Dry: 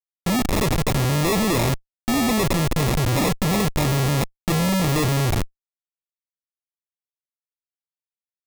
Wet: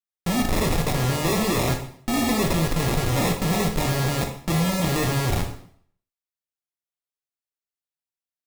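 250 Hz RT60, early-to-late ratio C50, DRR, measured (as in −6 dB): 0.60 s, 7.0 dB, 2.5 dB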